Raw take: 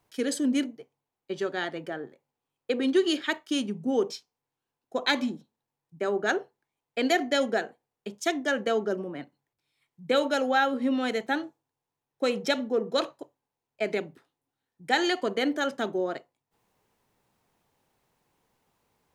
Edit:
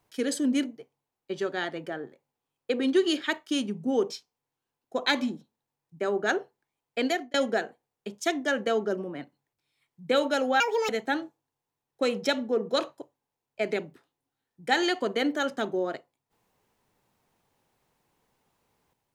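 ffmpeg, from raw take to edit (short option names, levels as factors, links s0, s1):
-filter_complex "[0:a]asplit=4[s0][s1][s2][s3];[s0]atrim=end=7.34,asetpts=PTS-STARTPTS,afade=t=out:st=7.01:d=0.33[s4];[s1]atrim=start=7.34:end=10.604,asetpts=PTS-STARTPTS,afade=t=in:d=0.004:c=hsin[s5];[s2]atrim=start=10.6:end=11.1,asetpts=PTS-STARTPTS,asetrate=76293,aresample=44100[s6];[s3]atrim=start=11.096[s7];[s4][s5]concat=n=2:v=0:a=1[s8];[s8][s6]acrossfade=d=0.004:c1=hsin:c2=hsin[s9];[s9][s7]acrossfade=d=0.004:c1=hsin:c2=hsin"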